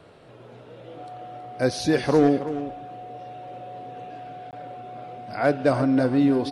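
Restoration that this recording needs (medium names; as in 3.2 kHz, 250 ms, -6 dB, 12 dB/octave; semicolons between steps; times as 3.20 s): band-stop 730 Hz, Q 30; interpolate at 4.51 s, 18 ms; inverse comb 323 ms -12 dB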